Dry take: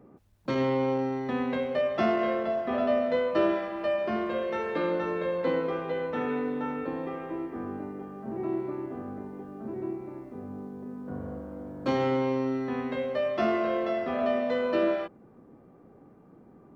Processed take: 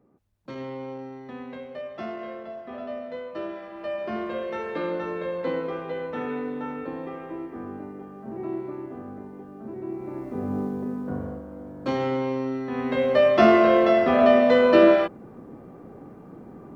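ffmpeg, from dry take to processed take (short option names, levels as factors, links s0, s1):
-af "volume=12.6,afade=t=in:st=3.53:d=0.67:silence=0.375837,afade=t=in:st=9.86:d=0.72:silence=0.237137,afade=t=out:st=10.58:d=0.84:silence=0.266073,afade=t=in:st=12.7:d=0.49:silence=0.316228"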